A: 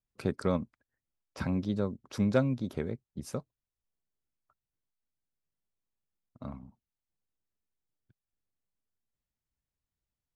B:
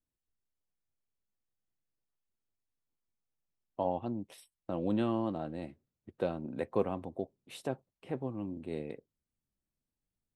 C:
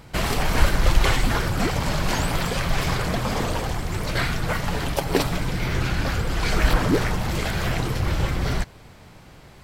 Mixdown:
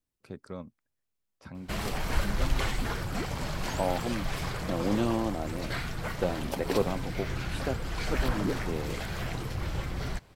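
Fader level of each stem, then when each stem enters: -11.5 dB, +3.0 dB, -10.0 dB; 0.05 s, 0.00 s, 1.55 s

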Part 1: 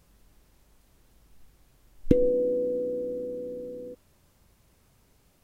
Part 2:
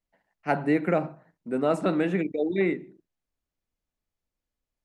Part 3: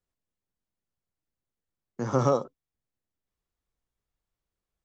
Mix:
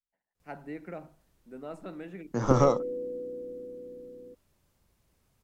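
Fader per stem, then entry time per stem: -8.0 dB, -17.0 dB, +1.0 dB; 0.40 s, 0.00 s, 0.35 s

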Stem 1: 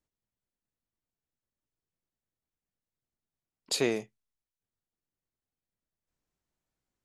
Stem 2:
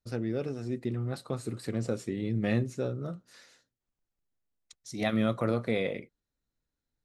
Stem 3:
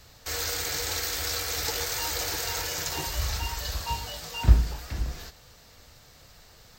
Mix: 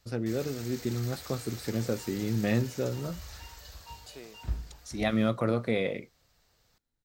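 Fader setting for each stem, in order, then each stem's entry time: -19.5 dB, +1.0 dB, -15.5 dB; 0.35 s, 0.00 s, 0.00 s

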